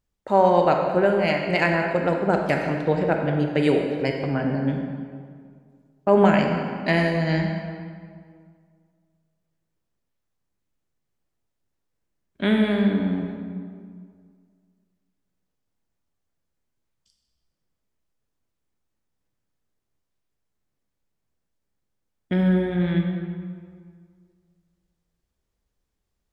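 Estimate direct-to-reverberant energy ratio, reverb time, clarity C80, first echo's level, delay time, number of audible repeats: 2.5 dB, 2.0 s, 4.5 dB, none, none, none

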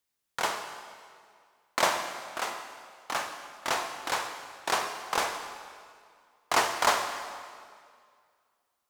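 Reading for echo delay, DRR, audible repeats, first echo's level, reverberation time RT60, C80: none, 6.0 dB, none, none, 2.1 s, 7.5 dB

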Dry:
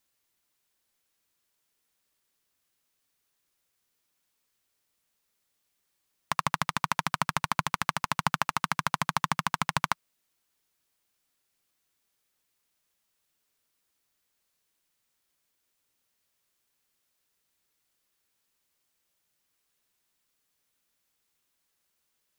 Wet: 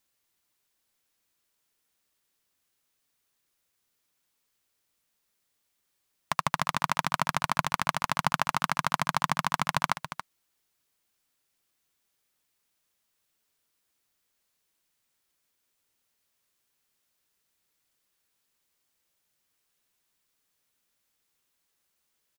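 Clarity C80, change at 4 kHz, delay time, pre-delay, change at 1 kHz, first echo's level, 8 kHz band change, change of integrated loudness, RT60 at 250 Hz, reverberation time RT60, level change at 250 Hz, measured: none, +0.5 dB, 0.279 s, none, +1.0 dB, -10.5 dB, +0.5 dB, +0.5 dB, none, none, +0.5 dB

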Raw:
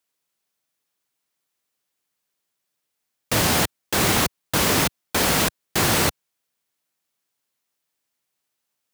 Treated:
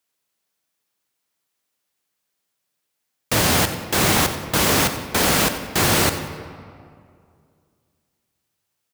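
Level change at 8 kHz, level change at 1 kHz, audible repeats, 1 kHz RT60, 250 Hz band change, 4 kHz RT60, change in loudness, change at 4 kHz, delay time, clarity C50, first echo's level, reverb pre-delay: +2.0 dB, +2.5 dB, 1, 2.2 s, +2.0 dB, 1.3 s, +2.0 dB, +2.0 dB, 92 ms, 8.5 dB, -14.5 dB, 28 ms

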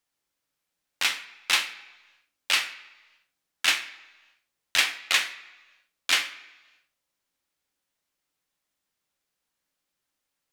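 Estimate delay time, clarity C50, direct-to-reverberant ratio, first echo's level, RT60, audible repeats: none, 13.0 dB, 6.0 dB, none, 1.2 s, none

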